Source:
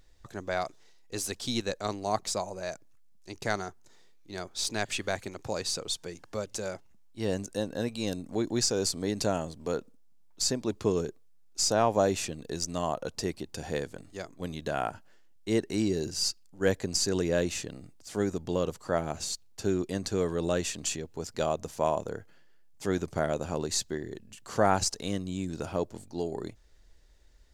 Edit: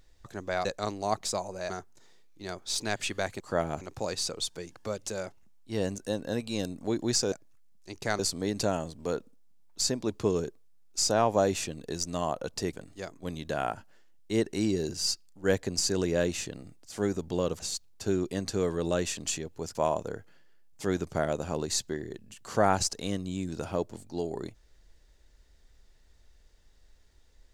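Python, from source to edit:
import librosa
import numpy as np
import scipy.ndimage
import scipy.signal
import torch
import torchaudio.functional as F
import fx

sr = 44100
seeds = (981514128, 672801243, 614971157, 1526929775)

y = fx.edit(x, sr, fx.cut(start_s=0.65, length_s=1.02),
    fx.move(start_s=2.72, length_s=0.87, to_s=8.8),
    fx.cut(start_s=13.34, length_s=0.56),
    fx.move(start_s=18.77, length_s=0.41, to_s=5.29),
    fx.cut(start_s=21.33, length_s=0.43), tone=tone)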